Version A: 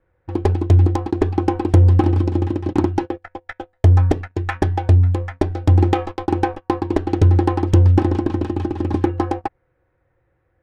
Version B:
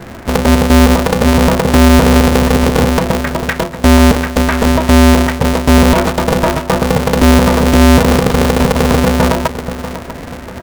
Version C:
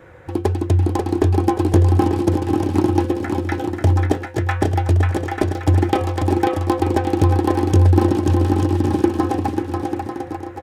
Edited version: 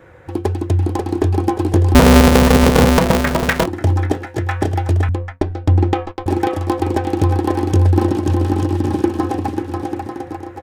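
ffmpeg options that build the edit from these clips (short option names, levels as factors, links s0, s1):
-filter_complex "[2:a]asplit=3[s0][s1][s2];[s0]atrim=end=1.952[s3];[1:a]atrim=start=1.948:end=3.662[s4];[s1]atrim=start=3.658:end=5.092[s5];[0:a]atrim=start=5.088:end=6.262[s6];[s2]atrim=start=6.258[s7];[s3][s4]acrossfade=d=0.004:c1=hsin:c2=hsin[s8];[s8][s5]acrossfade=d=0.004:c1=hsin:c2=hsin[s9];[s9][s6]acrossfade=d=0.004:c1=hsin:c2=hsin[s10];[s10][s7]acrossfade=d=0.004:c1=hsin:c2=hsin"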